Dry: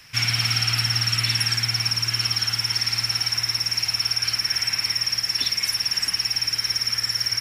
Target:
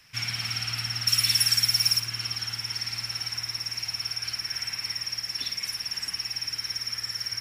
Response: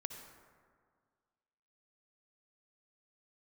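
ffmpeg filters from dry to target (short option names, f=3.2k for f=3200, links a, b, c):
-filter_complex "[0:a]asettb=1/sr,asplit=3[a][b][c];[a]atrim=end=1.074[d];[b]atrim=start=1.07:end=2,asetpts=PTS-STARTPTS,afade=t=in:d=0.004:c=qsin,afade=t=out:st=0.926:d=0.004:c=qsin,aemphasis=mode=production:type=75kf[e];[c]atrim=start=1.996[f];[d][e]acrossfade=d=0.004:c1=hsin:c2=qsin[g];[g][f]acrossfade=d=0.004:c1=qsin:c2=hsin[h];[1:a]atrim=start_sample=2205,atrim=end_sample=4410,asetrate=57330,aresample=44100[i];[h][i]afir=irnorm=-1:irlink=0,volume=-3dB"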